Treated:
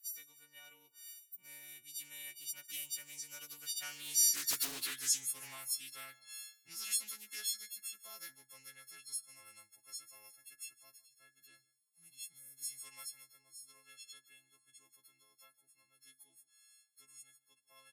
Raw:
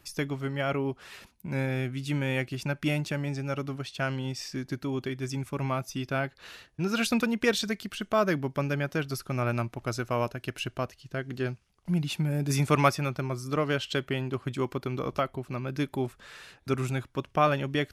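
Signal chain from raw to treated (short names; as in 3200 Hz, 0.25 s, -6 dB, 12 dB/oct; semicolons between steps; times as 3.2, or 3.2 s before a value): frequency quantiser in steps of 4 st; Doppler pass-by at 4.59, 15 m/s, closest 2.6 m; tilt +4 dB/oct; in parallel at -0.5 dB: compressor, threshold -45 dBFS, peak gain reduction 20 dB; on the sum: pre-emphasis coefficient 0.8; resonator 130 Hz, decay 0.33 s, harmonics all, mix 50%; on a send: echo 0.153 s -21 dB; on the sum: Doppler distortion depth 0.64 ms; gain +4.5 dB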